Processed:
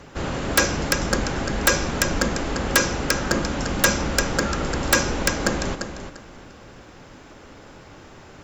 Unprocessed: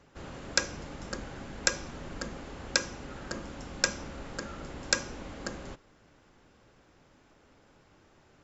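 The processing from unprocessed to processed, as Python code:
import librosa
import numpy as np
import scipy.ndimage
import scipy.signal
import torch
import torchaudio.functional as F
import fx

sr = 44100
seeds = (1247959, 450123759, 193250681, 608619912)

y = fx.echo_feedback(x, sr, ms=346, feedback_pct=21, wet_db=-9.5)
y = fx.fold_sine(y, sr, drive_db=18, ceiling_db=-3.0)
y = y * librosa.db_to_amplitude(-5.5)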